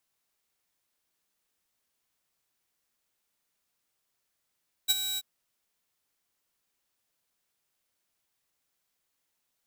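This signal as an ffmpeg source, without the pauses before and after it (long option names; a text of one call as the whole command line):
ffmpeg -f lavfi -i "aevalsrc='0.15*(2*mod(3870*t,1)-1)':duration=0.335:sample_rate=44100,afade=type=in:duration=0.025,afade=type=out:start_time=0.025:duration=0.027:silence=0.282,afade=type=out:start_time=0.3:duration=0.035" out.wav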